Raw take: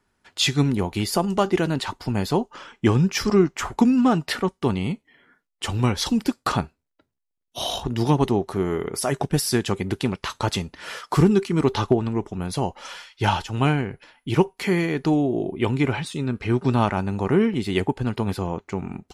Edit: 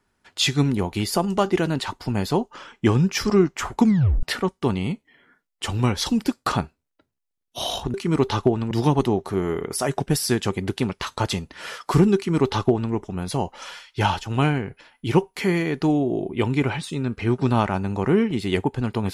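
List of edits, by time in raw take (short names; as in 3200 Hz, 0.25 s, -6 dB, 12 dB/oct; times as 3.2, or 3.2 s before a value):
3.84 tape stop 0.39 s
11.39–12.16 copy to 7.94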